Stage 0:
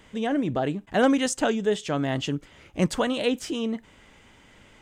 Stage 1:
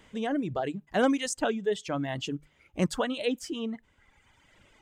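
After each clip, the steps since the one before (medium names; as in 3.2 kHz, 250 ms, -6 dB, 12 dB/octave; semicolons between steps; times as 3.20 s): hum notches 50/100/150 Hz; reverb removal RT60 1.5 s; trim -3.5 dB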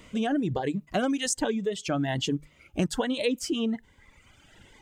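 compression 6:1, threshold -29 dBFS, peak gain reduction 10 dB; Shepard-style phaser rising 1.2 Hz; trim +7.5 dB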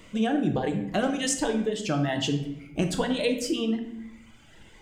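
simulated room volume 240 m³, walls mixed, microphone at 0.69 m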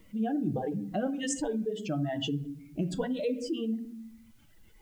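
spectral contrast enhancement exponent 1.7; added noise white -66 dBFS; trim -5 dB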